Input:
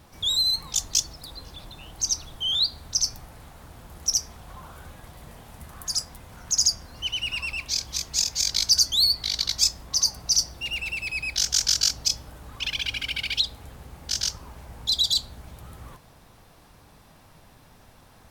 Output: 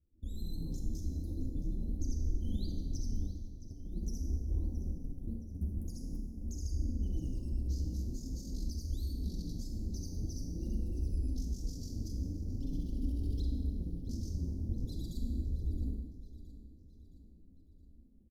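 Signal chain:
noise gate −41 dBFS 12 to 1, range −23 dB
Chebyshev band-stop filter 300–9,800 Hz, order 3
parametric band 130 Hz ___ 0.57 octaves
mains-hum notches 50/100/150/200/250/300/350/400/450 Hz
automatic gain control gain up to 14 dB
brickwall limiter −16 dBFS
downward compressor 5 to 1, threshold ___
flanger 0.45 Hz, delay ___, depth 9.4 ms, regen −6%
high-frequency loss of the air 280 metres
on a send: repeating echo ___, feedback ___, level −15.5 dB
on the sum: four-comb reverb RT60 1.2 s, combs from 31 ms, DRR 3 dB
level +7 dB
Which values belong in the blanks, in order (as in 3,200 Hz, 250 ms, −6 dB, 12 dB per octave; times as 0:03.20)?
−12 dB, −35 dBFS, 1.7 ms, 669 ms, 47%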